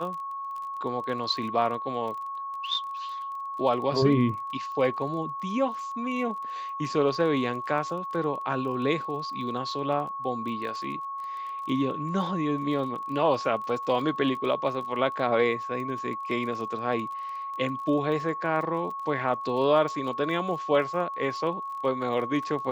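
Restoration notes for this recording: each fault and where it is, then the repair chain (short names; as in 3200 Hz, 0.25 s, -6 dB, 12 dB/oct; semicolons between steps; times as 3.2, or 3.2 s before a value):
crackle 22/s -36 dBFS
tone 1100 Hz -32 dBFS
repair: de-click; notch 1100 Hz, Q 30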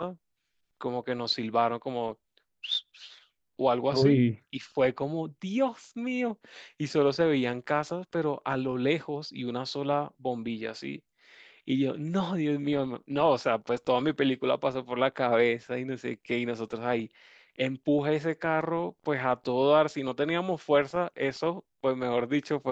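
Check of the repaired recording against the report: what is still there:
none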